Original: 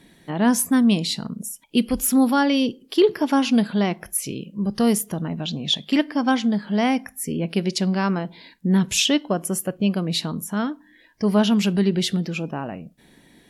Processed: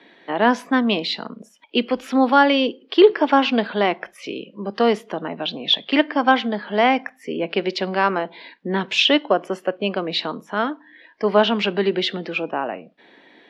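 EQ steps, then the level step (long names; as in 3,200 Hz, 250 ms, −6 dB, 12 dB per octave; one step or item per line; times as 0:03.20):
three-way crossover with the lows and the highs turned down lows −20 dB, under 340 Hz, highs −17 dB, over 4,700 Hz
three-way crossover with the lows and the highs turned down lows −22 dB, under 170 Hz, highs −22 dB, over 4,700 Hz
low-shelf EQ 110 Hz +10.5 dB
+7.5 dB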